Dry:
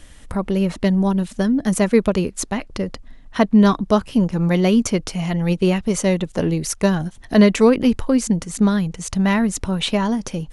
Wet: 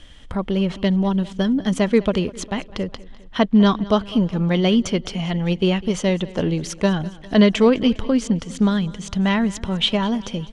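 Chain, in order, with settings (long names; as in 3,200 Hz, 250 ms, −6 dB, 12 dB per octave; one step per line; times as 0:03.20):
low-pass filter 5,600 Hz 12 dB per octave
parametric band 3,200 Hz +11 dB 0.22 octaves
repeating echo 202 ms, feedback 56%, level −20 dB
level −1.5 dB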